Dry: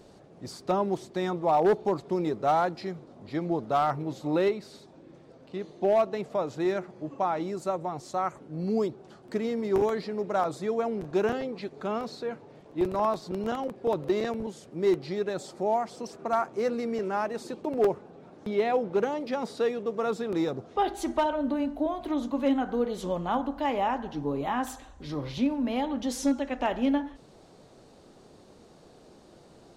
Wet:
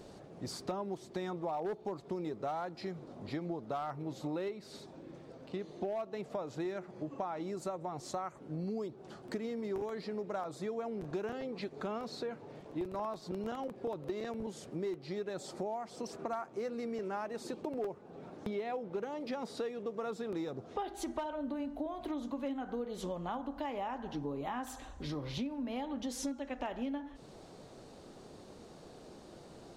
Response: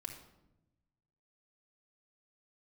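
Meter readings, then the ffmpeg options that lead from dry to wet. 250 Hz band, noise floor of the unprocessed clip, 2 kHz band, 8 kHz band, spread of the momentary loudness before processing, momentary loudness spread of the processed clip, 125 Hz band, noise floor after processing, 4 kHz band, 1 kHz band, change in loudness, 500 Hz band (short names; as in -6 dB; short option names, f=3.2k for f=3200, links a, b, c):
-9.5 dB, -54 dBFS, -10.0 dB, -5.0 dB, 10 LU, 13 LU, -7.0 dB, -54 dBFS, -7.0 dB, -11.5 dB, -10.5 dB, -11.0 dB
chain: -af "acompressor=threshold=-37dB:ratio=6,volume=1dB"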